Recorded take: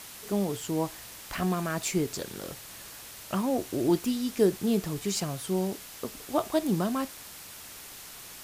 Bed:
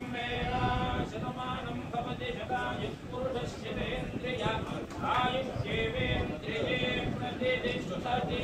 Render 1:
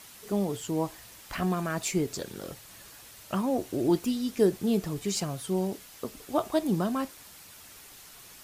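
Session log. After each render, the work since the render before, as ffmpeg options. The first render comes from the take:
-af "afftdn=nr=6:nf=-46"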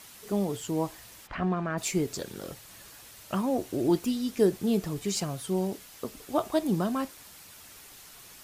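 -filter_complex "[0:a]asplit=3[a][b][c];[a]afade=t=out:st=1.26:d=0.02[d];[b]lowpass=2.4k,afade=t=in:st=1.26:d=0.02,afade=t=out:st=1.77:d=0.02[e];[c]afade=t=in:st=1.77:d=0.02[f];[d][e][f]amix=inputs=3:normalize=0"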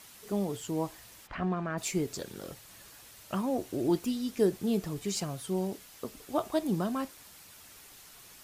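-af "volume=-3dB"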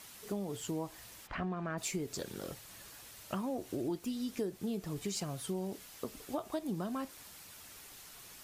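-af "acompressor=threshold=-34dB:ratio=5"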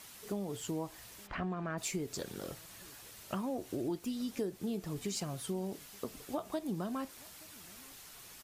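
-filter_complex "[0:a]asplit=2[a][b];[b]adelay=874.6,volume=-24dB,highshelf=f=4k:g=-19.7[c];[a][c]amix=inputs=2:normalize=0"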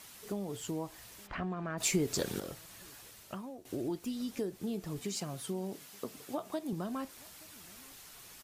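-filter_complex "[0:a]asettb=1/sr,asplit=3[a][b][c];[a]atrim=end=1.804[d];[b]atrim=start=1.8:end=2.4,asetpts=PTS-STARTPTS,afade=t=in:d=0.004:c=qsin,afade=t=out:st=0.596:d=0.004:c=qsin,acontrast=85[e];[c]atrim=start=2.396[f];[d][e]acrossfade=d=0.004:c1=hsin:c2=qsin[g];[g][f]acrossfade=d=0.004:c1=qsin:c2=hsin,asettb=1/sr,asplit=3[h][i][j];[h]atrim=end=5.004[k];[i]atrim=start=5:end=6.73,asetpts=PTS-STARTPTS,afade=t=in:d=0.004:c=qsin,afade=t=out:st=1.726:d=0.004:c=qsin,highpass=110[l];[j]atrim=start=6.726[m];[k][l]acrossfade=d=0.004:c1=hsin:c2=qsin[n];[n][m]acrossfade=d=0.004:c1=qsin:c2=hsin,asplit=2[o][p];[o]atrim=end=3.65,asetpts=PTS-STARTPTS,afade=t=out:st=3:d=0.65:silence=0.188365[q];[p]atrim=start=3.65,asetpts=PTS-STARTPTS,afade=t=in:d=0.004:c=hsin:silence=0.188365[r];[q][r]concat=n=2:v=0:a=1"

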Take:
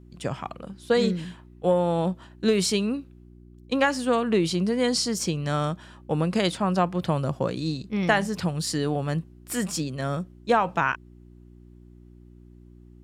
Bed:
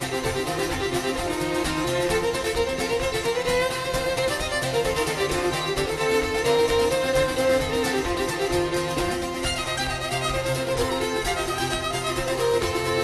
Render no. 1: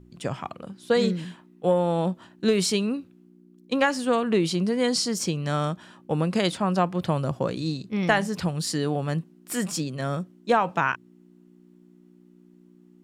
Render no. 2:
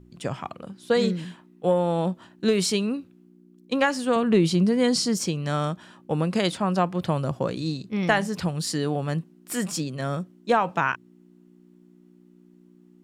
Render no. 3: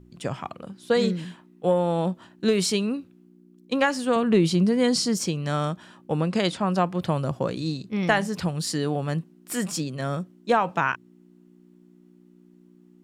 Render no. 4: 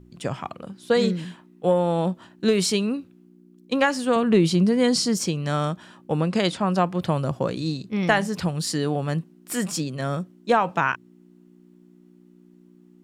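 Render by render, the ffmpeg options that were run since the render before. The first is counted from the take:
-af "bandreject=f=60:t=h:w=4,bandreject=f=120:t=h:w=4"
-filter_complex "[0:a]asettb=1/sr,asplit=3[a][b][c];[a]atrim=end=4.164[d];[b]atrim=start=4.16:end=5.17,asetpts=PTS-STARTPTS,afade=t=in:d=0.004:c=qsin,afade=t=out:st=1.006:d=0.004:c=qsin,lowshelf=f=200:g=9.5[e];[c]atrim=start=5.166[f];[d][e]acrossfade=d=0.004:c1=hsin:c2=qsin[g];[g][f]acrossfade=d=0.004:c1=qsin:c2=hsin"
-filter_complex "[0:a]asettb=1/sr,asplit=3[a][b][c];[a]atrim=end=6.174[d];[b]atrim=start=6.17:end=6.67,asetpts=PTS-STARTPTS,afade=t=in:d=0.004:c=qsin,afade=t=out:st=0.496:d=0.004:c=qsin,lowpass=8.5k[e];[c]atrim=start=6.666[f];[d][e]acrossfade=d=0.004:c1=hsin:c2=qsin[g];[g][f]acrossfade=d=0.004:c1=qsin:c2=hsin"
-af "volume=1.5dB"

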